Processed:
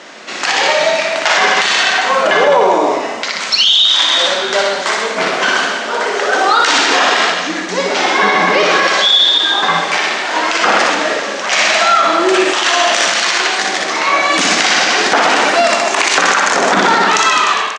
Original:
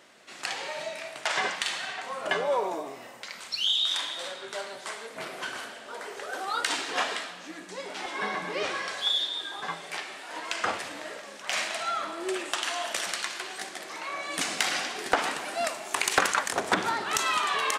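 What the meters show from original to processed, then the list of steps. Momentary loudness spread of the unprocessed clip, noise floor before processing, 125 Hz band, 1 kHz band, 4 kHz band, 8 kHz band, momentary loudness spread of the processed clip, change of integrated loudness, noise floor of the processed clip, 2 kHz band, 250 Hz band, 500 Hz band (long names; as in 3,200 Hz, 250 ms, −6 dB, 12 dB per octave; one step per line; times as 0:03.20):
13 LU, −45 dBFS, +16.5 dB, +19.0 dB, +18.0 dB, +15.5 dB, 7 LU, +18.5 dB, −21 dBFS, +19.0 dB, +19.5 dB, +19.5 dB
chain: fade-out on the ending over 0.82 s
elliptic band-pass filter 180–6,500 Hz, stop band 60 dB
on a send: reverse bouncing-ball delay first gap 60 ms, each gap 1.15×, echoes 5
on the sum: boost into a limiter +22 dB
level −1 dB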